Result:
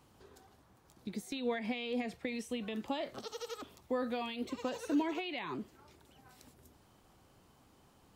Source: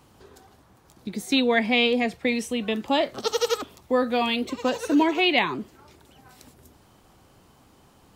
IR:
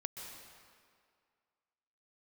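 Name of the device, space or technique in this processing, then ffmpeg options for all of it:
de-esser from a sidechain: -filter_complex "[0:a]asplit=2[s0][s1];[s1]highpass=f=6200:p=1,apad=whole_len=359754[s2];[s0][s2]sidechaincompress=threshold=0.00794:ratio=3:attack=3.2:release=66,volume=0.376"

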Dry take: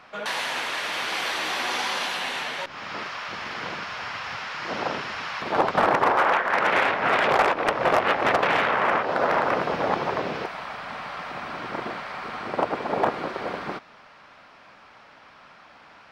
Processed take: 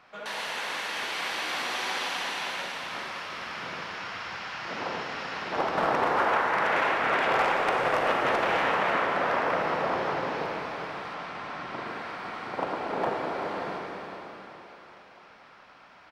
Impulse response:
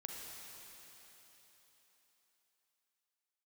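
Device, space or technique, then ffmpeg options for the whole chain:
cave: -filter_complex "[0:a]aecho=1:1:387:0.316[s0];[1:a]atrim=start_sample=2205[s1];[s0][s1]afir=irnorm=-1:irlink=0,asettb=1/sr,asplit=3[s2][s3][s4];[s2]atrim=end=11.144[s5];[s3]atrim=start=11.14:end=11.87,asetpts=PTS-STARTPTS,afade=t=in:d=0.004:c=qsin,afade=t=out:st=0.726:d=0.004:c=qsin,lowpass=8800[s6];[s4]atrim=start=11.866[s7];[s5][s6]acrossfade=d=0.004:c1=hsin:c2=qsin[s8];[s8][s7]acrossfade=d=0.004:c1=qsin:c2=hsin,volume=0.794"

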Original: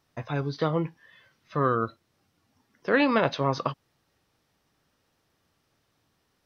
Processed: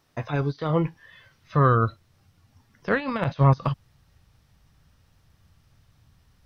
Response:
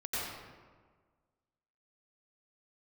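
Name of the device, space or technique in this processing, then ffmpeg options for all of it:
de-esser from a sidechain: -filter_complex "[0:a]asubboost=boost=10.5:cutoff=110,asplit=2[s0][s1];[s1]highpass=f=4800:w=0.5412,highpass=f=4800:w=1.3066,apad=whole_len=284608[s2];[s0][s2]sidechaincompress=threshold=0.00141:ratio=12:attack=1.5:release=45,volume=1.78"

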